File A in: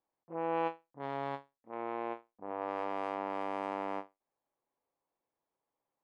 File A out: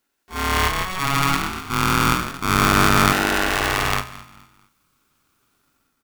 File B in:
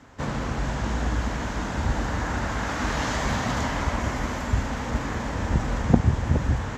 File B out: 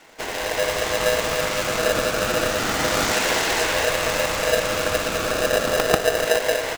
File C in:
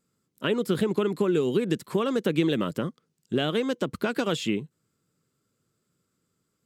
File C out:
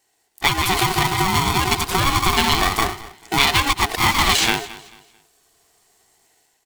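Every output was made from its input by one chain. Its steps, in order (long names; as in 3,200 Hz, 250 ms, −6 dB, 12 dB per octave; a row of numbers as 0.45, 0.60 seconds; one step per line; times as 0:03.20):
parametric band 190 Hz −9 dB 2.6 octaves
automatic gain control gain up to 6.5 dB
low-shelf EQ 240 Hz −6 dB
delay with pitch and tempo change per echo 192 ms, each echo +1 semitone, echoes 3, each echo −6 dB
downward compressor 1.5 to 1, threshold −30 dBFS
comb filter 1.4 ms, depth 51%
repeating echo 220 ms, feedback 32%, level −18 dB
auto-filter notch saw up 0.32 Hz 620–2,100 Hz
ring modulator with a square carrier 560 Hz
normalise the peak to −2 dBFS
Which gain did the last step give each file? +18.0, +5.5, +12.0 decibels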